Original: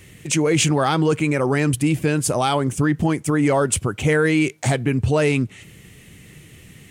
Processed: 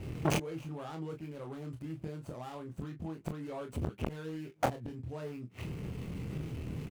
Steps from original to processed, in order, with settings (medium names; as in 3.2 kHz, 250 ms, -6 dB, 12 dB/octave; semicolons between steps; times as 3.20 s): median filter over 25 samples; inverted gate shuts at -18 dBFS, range -30 dB; overload inside the chain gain 22.5 dB; on a send: early reflections 25 ms -5 dB, 40 ms -11 dB; on the sum: transformer saturation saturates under 820 Hz; trim +6.5 dB